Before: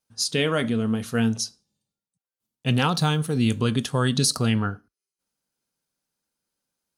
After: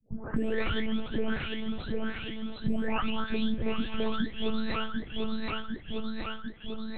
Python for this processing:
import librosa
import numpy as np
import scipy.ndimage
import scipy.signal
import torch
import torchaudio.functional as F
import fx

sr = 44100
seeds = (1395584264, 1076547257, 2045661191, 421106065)

p1 = fx.spec_delay(x, sr, highs='late', ms=839)
p2 = p1 + fx.echo_feedback(p1, sr, ms=748, feedback_pct=26, wet_db=-10, dry=0)
p3 = fx.lpc_monotone(p2, sr, seeds[0], pitch_hz=220.0, order=10)
p4 = fx.band_squash(p3, sr, depth_pct=100)
y = p4 * librosa.db_to_amplitude(-2.5)